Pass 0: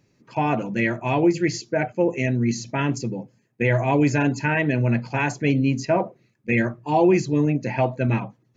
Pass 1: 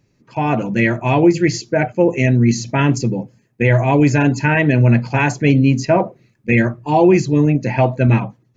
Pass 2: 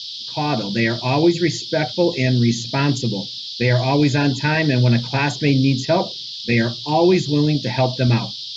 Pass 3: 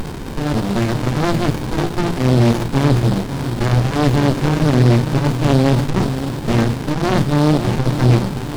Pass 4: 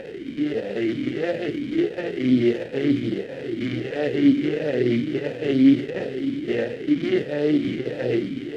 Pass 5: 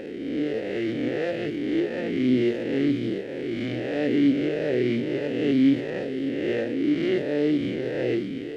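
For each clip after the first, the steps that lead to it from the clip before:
low-shelf EQ 84 Hz +10 dB; automatic gain control gain up to 9.5 dB
noise in a band 3,200–5,200 Hz −28 dBFS; level −3.5 dB
leveller curve on the samples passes 2; echo with a time of its own for lows and highs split 1,300 Hz, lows 559 ms, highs 201 ms, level −11 dB; windowed peak hold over 65 samples; level +1.5 dB
formant filter swept between two vowels e-i 1.5 Hz; level +5.5 dB
peak hold with a rise ahead of every peak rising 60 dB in 1.39 s; level −5 dB

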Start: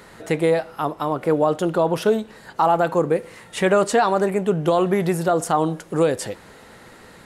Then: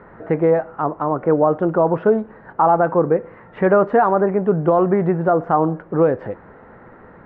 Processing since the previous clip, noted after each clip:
low-pass filter 1,600 Hz 24 dB per octave
level +3 dB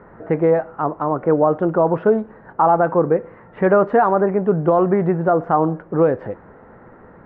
one half of a high-frequency compander decoder only

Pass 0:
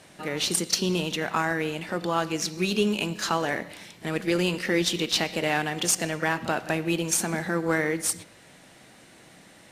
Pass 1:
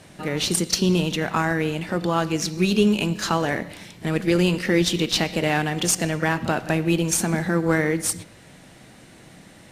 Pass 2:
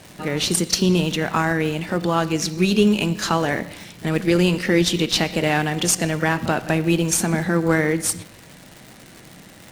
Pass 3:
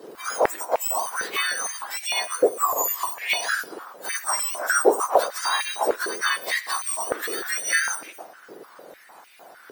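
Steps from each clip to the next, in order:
low-shelf EQ 220 Hz +10 dB; level +2 dB
surface crackle 230 per second −33 dBFS; level +2 dB
frequency axis turned over on the octave scale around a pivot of 1,700 Hz; high-pass on a step sequencer 6.6 Hz 420–2,400 Hz; level −3.5 dB

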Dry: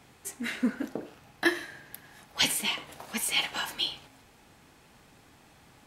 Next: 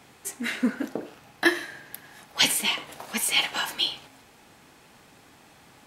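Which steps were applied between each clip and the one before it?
low-shelf EQ 100 Hz −10.5 dB
level +4.5 dB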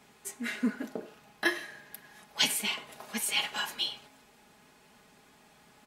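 comb filter 4.8 ms, depth 52%
level −7 dB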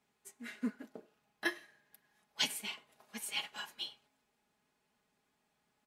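expander for the loud parts 1.5 to 1, over −50 dBFS
level −6 dB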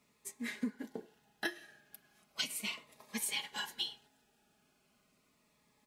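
downward compressor 16 to 1, threshold −40 dBFS, peak gain reduction 13.5 dB
phaser whose notches keep moving one way falling 0.37 Hz
level +8 dB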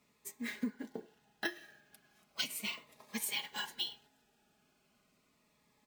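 bad sample-rate conversion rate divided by 2×, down filtered, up hold

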